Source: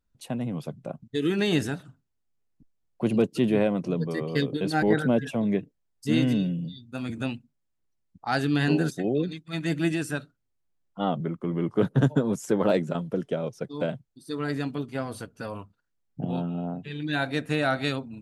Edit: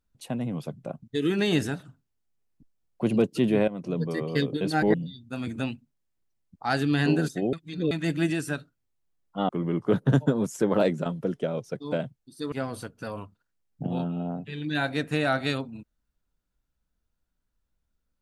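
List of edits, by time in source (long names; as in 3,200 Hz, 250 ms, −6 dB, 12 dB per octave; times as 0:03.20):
0:03.68–0:04.01: fade in, from −14 dB
0:04.94–0:06.56: remove
0:09.15–0:09.53: reverse
0:11.11–0:11.38: remove
0:14.41–0:14.90: remove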